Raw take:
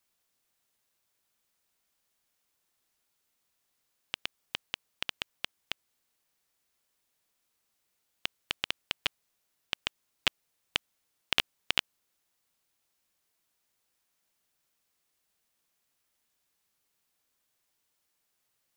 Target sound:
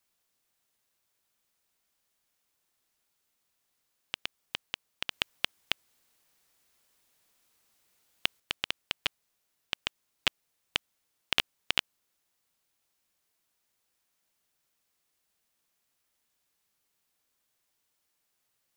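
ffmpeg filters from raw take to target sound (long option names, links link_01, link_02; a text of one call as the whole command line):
ffmpeg -i in.wav -filter_complex "[0:a]asettb=1/sr,asplit=3[link_01][link_02][link_03];[link_01]atrim=end=5.114[link_04];[link_02]atrim=start=5.11:end=8.4,asetpts=PTS-STARTPTS,afade=type=in:duration=0.004:curve=qsin,afade=type=out:start_time=3.286:duration=0.004:curve=qsin,acontrast=87[link_05];[link_03]atrim=start=8.396[link_06];[link_04][link_05]acrossfade=duration=0.004:curve1=hsin:curve2=qsin[link_07];[link_07][link_06]acrossfade=duration=0.004:curve1=qsin:curve2=hsin" out.wav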